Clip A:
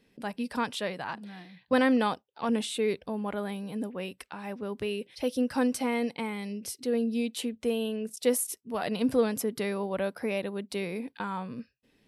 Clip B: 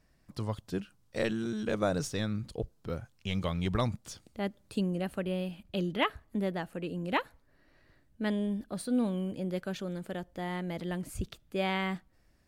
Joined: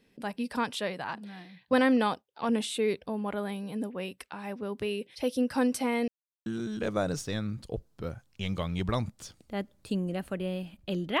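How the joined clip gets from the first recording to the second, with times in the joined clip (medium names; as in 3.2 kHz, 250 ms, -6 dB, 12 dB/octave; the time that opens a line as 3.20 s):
clip A
6.08–6.46 s: mute
6.46 s: go over to clip B from 1.32 s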